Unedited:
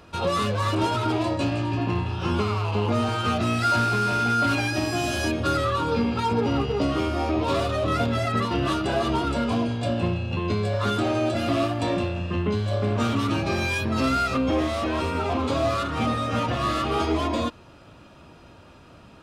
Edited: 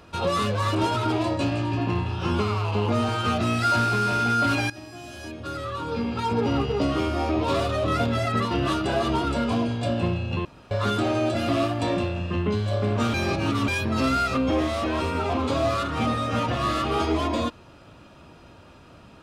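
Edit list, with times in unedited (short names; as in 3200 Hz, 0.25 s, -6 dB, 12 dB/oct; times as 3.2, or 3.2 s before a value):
4.7–6.46 fade in quadratic, from -16 dB
10.45–10.71 room tone
13.14–13.68 reverse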